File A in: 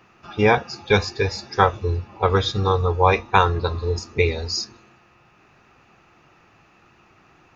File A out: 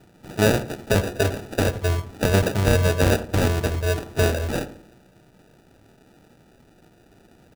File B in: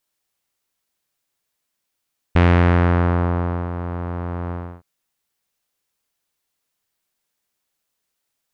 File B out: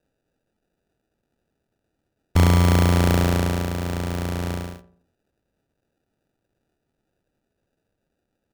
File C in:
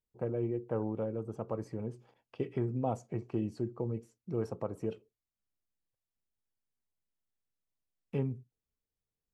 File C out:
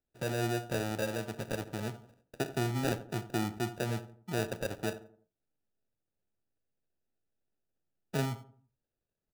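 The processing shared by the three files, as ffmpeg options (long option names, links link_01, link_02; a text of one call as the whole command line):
ffmpeg -i in.wav -filter_complex "[0:a]acrossover=split=160[link_01][link_02];[link_02]alimiter=limit=-10dB:level=0:latency=1:release=29[link_03];[link_01][link_03]amix=inputs=2:normalize=0,acrusher=samples=41:mix=1:aa=0.000001,asplit=2[link_04][link_05];[link_05]adelay=85,lowpass=frequency=1200:poles=1,volume=-13dB,asplit=2[link_06][link_07];[link_07]adelay=85,lowpass=frequency=1200:poles=1,volume=0.41,asplit=2[link_08][link_09];[link_09]adelay=85,lowpass=frequency=1200:poles=1,volume=0.41,asplit=2[link_10][link_11];[link_11]adelay=85,lowpass=frequency=1200:poles=1,volume=0.41[link_12];[link_04][link_06][link_08][link_10][link_12]amix=inputs=5:normalize=0,volume=1dB" out.wav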